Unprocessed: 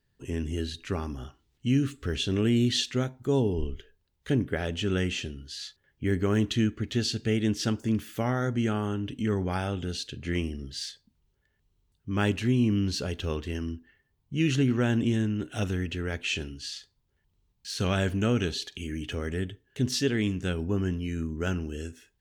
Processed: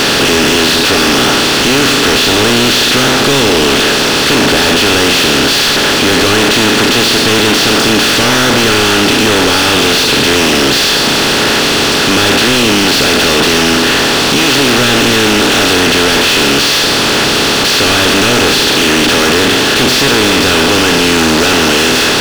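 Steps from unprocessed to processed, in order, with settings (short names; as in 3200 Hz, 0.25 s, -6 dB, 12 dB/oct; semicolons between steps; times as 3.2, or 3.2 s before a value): per-bin compression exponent 0.2; high shelf 4800 Hz +4 dB; overdrive pedal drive 38 dB, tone 4200 Hz, clips at -2.5 dBFS; gain +1 dB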